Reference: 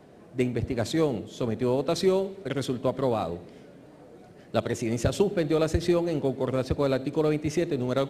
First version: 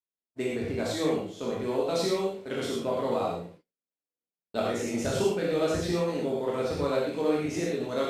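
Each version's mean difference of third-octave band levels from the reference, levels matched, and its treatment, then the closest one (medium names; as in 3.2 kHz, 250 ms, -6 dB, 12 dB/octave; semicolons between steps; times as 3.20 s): 7.0 dB: spectral sustain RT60 0.37 s; gate -40 dBFS, range -54 dB; bass shelf 120 Hz -11.5 dB; gated-style reverb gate 140 ms flat, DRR -4 dB; trim -7 dB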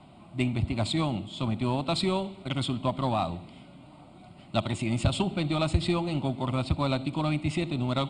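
4.5 dB: steep low-pass 9.2 kHz 96 dB/octave; treble shelf 2.7 kHz +5 dB; static phaser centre 1.7 kHz, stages 6; in parallel at -4 dB: saturation -23.5 dBFS, distortion -16 dB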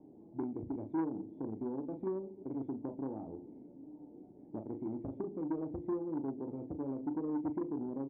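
10.5 dB: compression 2:1, threshold -35 dBFS, peak gain reduction 9.5 dB; cascade formant filter u; doubling 37 ms -5.5 dB; transformer saturation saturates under 490 Hz; trim +2.5 dB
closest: second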